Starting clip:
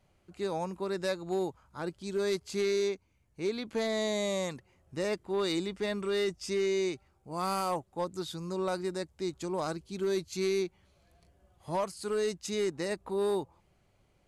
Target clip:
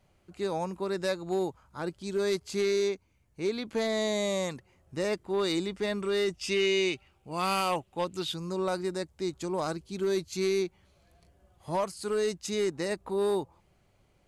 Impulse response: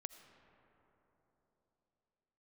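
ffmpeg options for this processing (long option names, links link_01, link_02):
-filter_complex "[0:a]asettb=1/sr,asplit=3[link_01][link_02][link_03];[link_01]atrim=end=6.334[link_04];[link_02]atrim=start=6.33:end=8.34,asetpts=PTS-STARTPTS,afade=type=in:duration=0.004:curve=qsin,afade=type=out:start_time=2.006:duration=0.004:curve=qsin,equalizer=frequency=2800:width_type=o:width=0.69:gain=14[link_05];[link_03]atrim=start=8.336[link_06];[link_04][link_05]acrossfade=duration=0.004:curve1=hsin:curve2=qsin[link_07];[link_07][link_06]acrossfade=duration=0.004:curve1=qsin:curve2=hsin,volume=2dB"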